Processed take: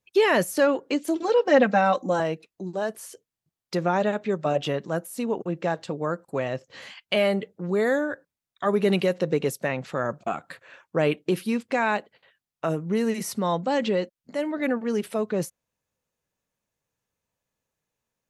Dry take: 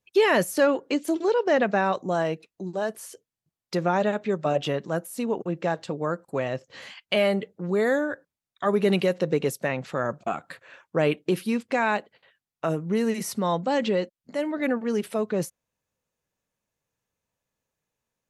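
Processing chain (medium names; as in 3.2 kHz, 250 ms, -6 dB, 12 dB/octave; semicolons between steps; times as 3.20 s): 1.22–2.20 s: comb 3.8 ms, depth 93%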